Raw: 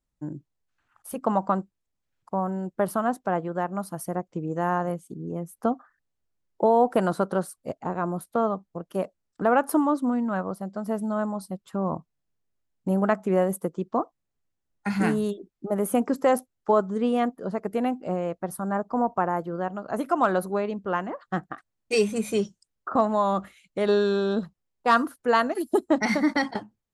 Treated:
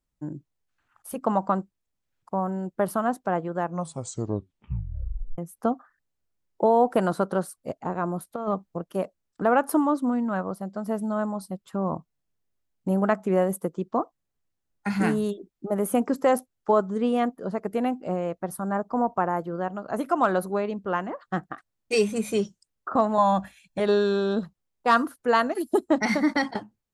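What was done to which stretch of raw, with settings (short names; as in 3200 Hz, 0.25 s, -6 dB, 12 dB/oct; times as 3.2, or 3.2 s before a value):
3.59 tape stop 1.79 s
8.31–8.84 negative-ratio compressor -26 dBFS, ratio -0.5
23.18–23.8 comb 1.2 ms, depth 92%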